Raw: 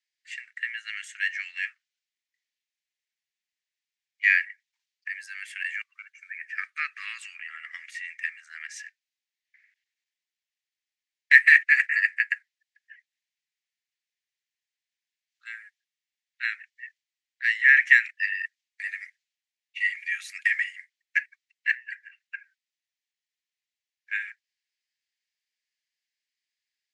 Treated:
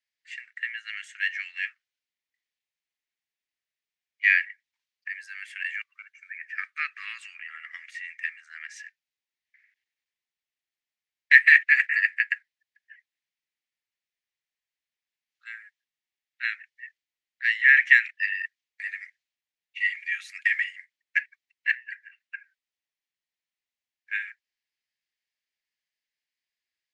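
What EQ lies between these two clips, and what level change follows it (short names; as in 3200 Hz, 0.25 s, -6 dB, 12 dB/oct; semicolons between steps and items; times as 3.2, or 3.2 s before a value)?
high shelf 5900 Hz -10 dB; dynamic EQ 3300 Hz, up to +5 dB, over -38 dBFS, Q 1.7; 0.0 dB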